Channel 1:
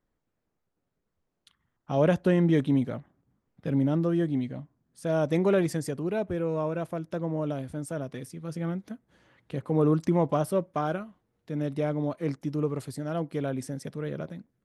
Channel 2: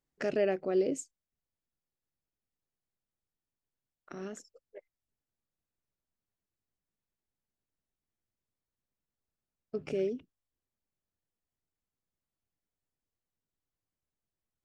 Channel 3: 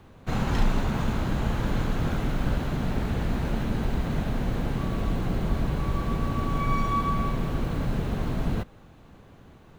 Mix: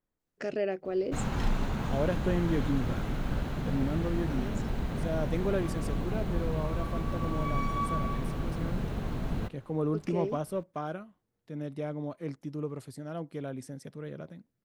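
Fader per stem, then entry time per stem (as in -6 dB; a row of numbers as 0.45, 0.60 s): -7.0, -2.0, -5.5 dB; 0.00, 0.20, 0.85 s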